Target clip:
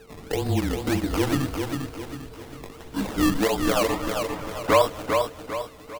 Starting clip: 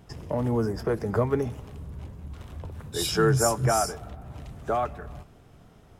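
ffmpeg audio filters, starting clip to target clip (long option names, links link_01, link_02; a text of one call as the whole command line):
ffmpeg -i in.wav -filter_complex "[0:a]highpass=frequency=180:width_type=q:width=0.5412,highpass=frequency=180:width_type=q:width=1.307,lowpass=frequency=3400:width_type=q:width=0.5176,lowpass=frequency=3400:width_type=q:width=0.7071,lowpass=frequency=3400:width_type=q:width=1.932,afreqshift=-140,asplit=2[link_01][link_02];[link_02]alimiter=limit=-22dB:level=0:latency=1,volume=2dB[link_03];[link_01][link_03]amix=inputs=2:normalize=0,aeval=exprs='val(0)+0.00794*sin(2*PI*450*n/s)':channel_layout=same,flanger=delay=16:depth=7.1:speed=1.4,acrusher=samples=20:mix=1:aa=0.000001:lfo=1:lforange=20:lforate=1.6,asettb=1/sr,asplit=3[link_04][link_05][link_06];[link_04]atrim=end=3.894[link_07];[link_05]atrim=start=3.89:end=4.82,asetpts=PTS-STARTPTS,afade=type=in:duration=0.004:curve=qsin,afade=type=out:start_time=0.926:duration=0.004:curve=qsin,equalizer=frequency=125:width_type=o:width=1:gain=6,equalizer=frequency=500:width_type=o:width=1:gain=4,equalizer=frequency=1000:width_type=o:width=1:gain=9,equalizer=frequency=2000:width_type=o:width=1:gain=6[link_08];[link_06]atrim=start=4.816[link_09];[link_07][link_08]acrossfade=duration=0.004:curve1=hsin:curve2=qsin[link_10];[link_10][link_09]acrossfade=duration=0.004:curve1=qsin:curve2=hsin,asplit=2[link_11][link_12];[link_12]aecho=0:1:399|798|1197|1596|1995:0.562|0.236|0.0992|0.0417|0.0175[link_13];[link_11][link_13]amix=inputs=2:normalize=0" out.wav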